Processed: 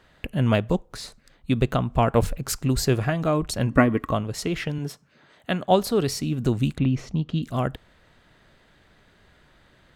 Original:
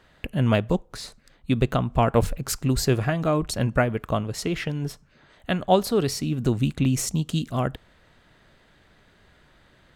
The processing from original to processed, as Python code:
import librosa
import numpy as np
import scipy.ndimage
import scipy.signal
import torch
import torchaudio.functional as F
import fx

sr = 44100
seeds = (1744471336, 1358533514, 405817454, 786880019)

y = fx.small_body(x, sr, hz=(280.0, 1100.0, 1900.0), ring_ms=45, db=14, at=(3.7, 4.12))
y = fx.highpass(y, sr, hz=130.0, slope=12, at=(4.78, 5.71))
y = fx.air_absorb(y, sr, metres=270.0, at=(6.78, 7.43))